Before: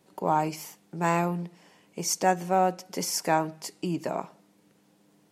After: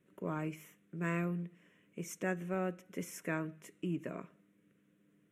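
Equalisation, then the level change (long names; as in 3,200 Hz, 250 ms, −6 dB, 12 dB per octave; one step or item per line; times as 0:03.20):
high-shelf EQ 5,400 Hz −10 dB
phaser with its sweep stopped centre 2,000 Hz, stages 4
−5.5 dB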